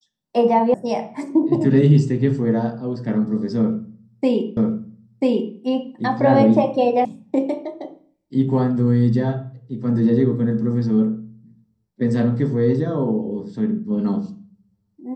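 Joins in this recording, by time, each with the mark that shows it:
0.74 s: sound stops dead
4.57 s: repeat of the last 0.99 s
7.05 s: sound stops dead

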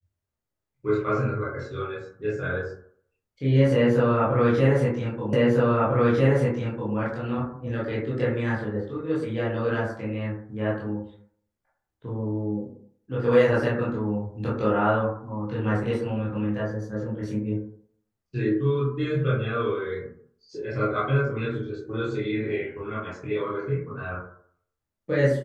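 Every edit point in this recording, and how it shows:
5.33 s: repeat of the last 1.6 s

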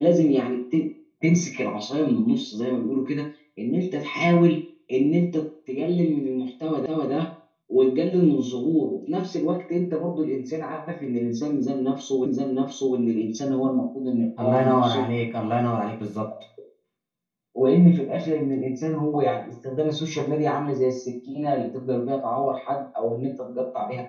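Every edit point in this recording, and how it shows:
6.86 s: repeat of the last 0.26 s
12.26 s: repeat of the last 0.71 s

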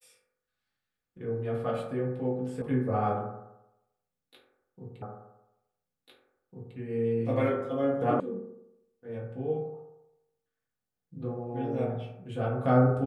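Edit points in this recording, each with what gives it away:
2.62 s: sound stops dead
5.02 s: repeat of the last 1.75 s
8.20 s: sound stops dead

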